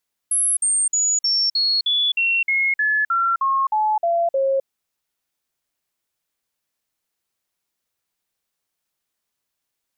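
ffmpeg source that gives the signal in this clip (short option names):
-f lavfi -i "aevalsrc='0.158*clip(min(mod(t,0.31),0.26-mod(t,0.31))/0.005,0,1)*sin(2*PI*10900*pow(2,-floor(t/0.31)/3)*mod(t,0.31))':d=4.34:s=44100"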